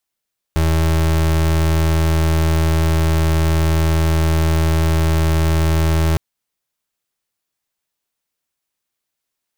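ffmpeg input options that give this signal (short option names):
-f lavfi -i "aevalsrc='0.178*(2*lt(mod(80.5*t,1),0.33)-1)':d=5.61:s=44100"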